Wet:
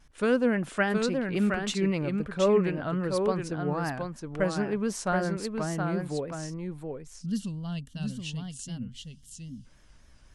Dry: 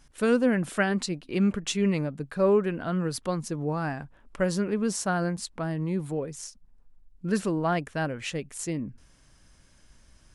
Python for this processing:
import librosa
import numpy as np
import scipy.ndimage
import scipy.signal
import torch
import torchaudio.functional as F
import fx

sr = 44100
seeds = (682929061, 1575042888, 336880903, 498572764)

p1 = x + fx.echo_single(x, sr, ms=721, db=-5.0, dry=0)
p2 = fx.spec_box(p1, sr, start_s=7.23, length_s=2.42, low_hz=260.0, high_hz=2700.0, gain_db=-20)
p3 = fx.peak_eq(p2, sr, hz=210.0, db=-2.5, octaves=2.1)
p4 = fx.vibrato(p3, sr, rate_hz=3.7, depth_cents=76.0)
y = fx.high_shelf(p4, sr, hz=6900.0, db=-10.0)